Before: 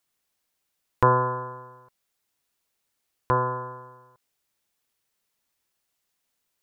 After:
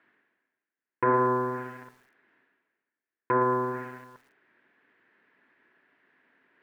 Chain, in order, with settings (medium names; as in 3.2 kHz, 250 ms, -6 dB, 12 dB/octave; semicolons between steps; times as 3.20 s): de-hum 432.3 Hz, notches 31; in parallel at +2 dB: compression 5:1, threshold -32 dBFS, peak gain reduction 16 dB; on the sum: waveshaping leveller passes 3; peak limiter -6.5 dBFS, peak gain reduction 4.5 dB; reverse; upward compressor, threshold -28 dBFS; reverse; cabinet simulation 250–2000 Hz, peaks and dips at 260 Hz +5 dB, 370 Hz +3 dB, 550 Hz -6 dB, 790 Hz -7 dB, 1.2 kHz -6 dB, 1.7 kHz +8 dB; low-pass that closes with the level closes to 1.2 kHz, closed at -17.5 dBFS; bit-crushed delay 112 ms, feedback 55%, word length 7-bit, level -14.5 dB; trim -7 dB